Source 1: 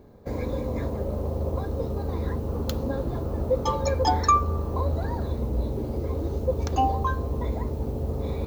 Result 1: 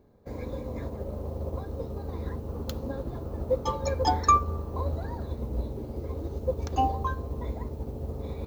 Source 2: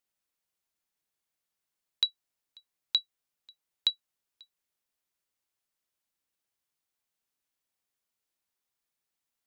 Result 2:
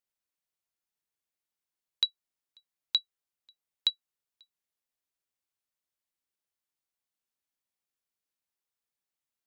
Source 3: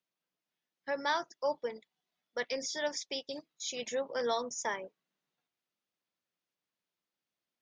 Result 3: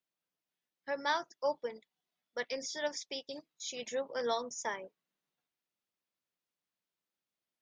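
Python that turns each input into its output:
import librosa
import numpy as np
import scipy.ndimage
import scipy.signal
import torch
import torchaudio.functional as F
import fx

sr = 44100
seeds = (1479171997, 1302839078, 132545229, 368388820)

y = fx.upward_expand(x, sr, threshold_db=-34.0, expansion=1.5)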